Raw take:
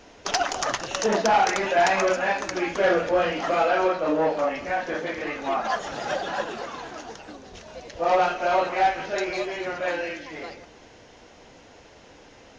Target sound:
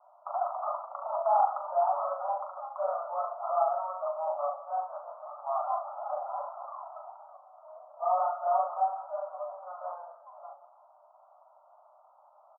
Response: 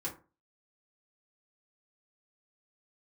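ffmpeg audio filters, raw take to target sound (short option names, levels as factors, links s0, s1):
-filter_complex "[0:a]asettb=1/sr,asplit=3[s0][s1][s2];[s0]atrim=end=3.674[s3];[s1]atrim=start=3.67:end=4.27,asetpts=PTS-STARTPTS,afade=t=in:d=0.004:c=qsin,afade=t=out:st=0.596:d=0.004:c=qsin,acompressor=threshold=0.0794:ratio=6[s4];[s2]atrim=start=4.266[s5];[s3][s4]acrossfade=d=0.004:c1=hsin:c2=qsin[s6];[s6][s5]acrossfade=d=0.004:c1=qsin:c2=hsin,asuperpass=centerf=880:order=20:qfactor=1.2,aecho=1:1:40|67:0.501|0.266,volume=0.562"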